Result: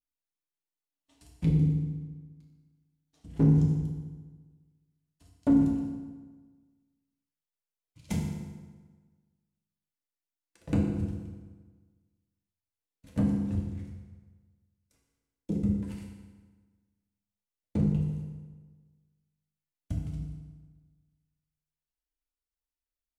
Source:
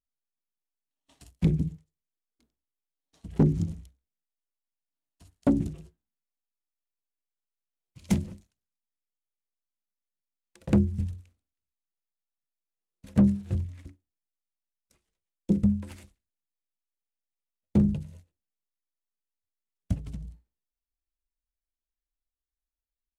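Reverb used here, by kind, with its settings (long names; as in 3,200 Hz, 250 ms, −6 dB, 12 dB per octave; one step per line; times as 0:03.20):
feedback delay network reverb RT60 1.4 s, low-frequency decay 1.05×, high-frequency decay 0.75×, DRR −2 dB
level −7 dB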